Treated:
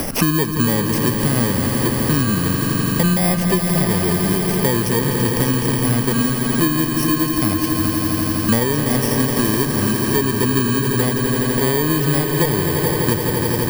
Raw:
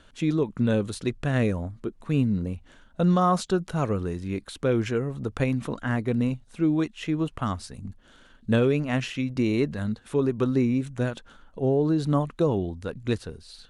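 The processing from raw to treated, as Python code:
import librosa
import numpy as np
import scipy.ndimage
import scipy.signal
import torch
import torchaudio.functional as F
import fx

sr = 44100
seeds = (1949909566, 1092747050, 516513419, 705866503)

p1 = fx.bit_reversed(x, sr, seeds[0], block=32)
p2 = fx.level_steps(p1, sr, step_db=20)
p3 = p1 + (p2 * 10.0 ** (-1.5 / 20.0))
p4 = 10.0 ** (-13.5 / 20.0) * np.tanh(p3 / 10.0 ** (-13.5 / 20.0))
p5 = fx.echo_swell(p4, sr, ms=84, loudest=5, wet_db=-11)
p6 = fx.band_squash(p5, sr, depth_pct=100)
y = p6 * 10.0 ** (4.5 / 20.0)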